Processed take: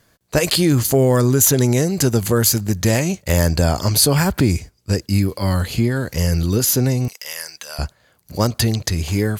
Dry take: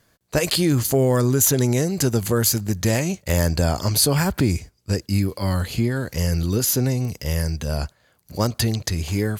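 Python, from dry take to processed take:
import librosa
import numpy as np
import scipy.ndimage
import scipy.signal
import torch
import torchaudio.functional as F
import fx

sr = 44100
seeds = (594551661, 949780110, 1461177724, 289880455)

y = fx.highpass(x, sr, hz=1200.0, slope=12, at=(7.08, 7.79))
y = y * librosa.db_to_amplitude(3.5)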